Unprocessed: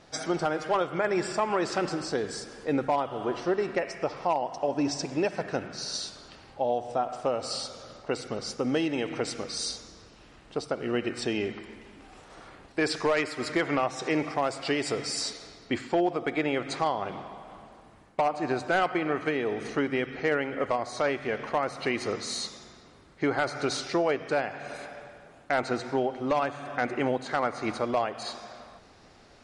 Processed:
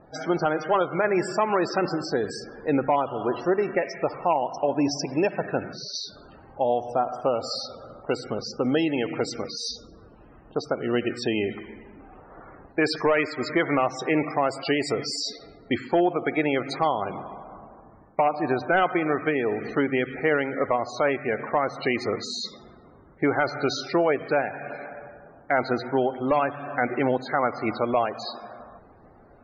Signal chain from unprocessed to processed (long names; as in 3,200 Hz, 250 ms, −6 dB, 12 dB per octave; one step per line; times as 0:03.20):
spectral peaks only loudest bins 64
low-pass that shuts in the quiet parts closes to 1,200 Hz, open at −27 dBFS
level +4 dB